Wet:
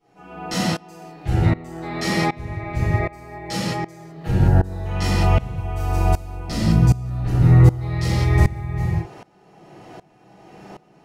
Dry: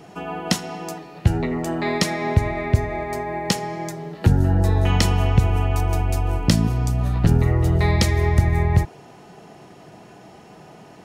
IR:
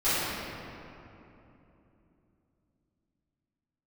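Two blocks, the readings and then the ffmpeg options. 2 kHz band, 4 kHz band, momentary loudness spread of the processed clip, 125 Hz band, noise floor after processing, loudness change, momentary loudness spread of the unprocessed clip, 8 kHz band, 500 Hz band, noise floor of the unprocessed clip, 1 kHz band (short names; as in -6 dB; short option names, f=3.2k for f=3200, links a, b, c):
-1.0 dB, -2.5 dB, 13 LU, +1.5 dB, -55 dBFS, +0.5 dB, 9 LU, -4.0 dB, -2.5 dB, -45 dBFS, -0.5 dB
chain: -filter_complex "[1:a]atrim=start_sample=2205,afade=t=out:st=0.27:d=0.01,atrim=end_sample=12348[a];[0:a][a]afir=irnorm=-1:irlink=0,aeval=exprs='val(0)*pow(10,-21*if(lt(mod(-1.3*n/s,1),2*abs(-1.3)/1000),1-mod(-1.3*n/s,1)/(2*abs(-1.3)/1000),(mod(-1.3*n/s,1)-2*abs(-1.3)/1000)/(1-2*abs(-1.3)/1000))/20)':c=same,volume=-7dB"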